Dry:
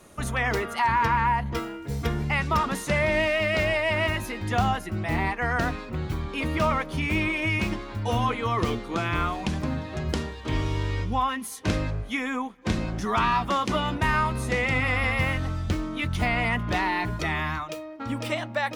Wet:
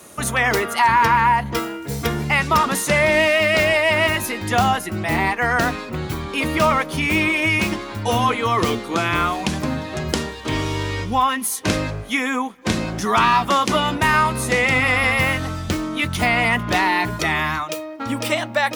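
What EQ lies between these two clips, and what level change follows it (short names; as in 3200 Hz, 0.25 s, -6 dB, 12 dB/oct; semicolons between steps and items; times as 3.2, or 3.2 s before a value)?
HPF 170 Hz 6 dB/oct; high shelf 6700 Hz +9 dB; +7.5 dB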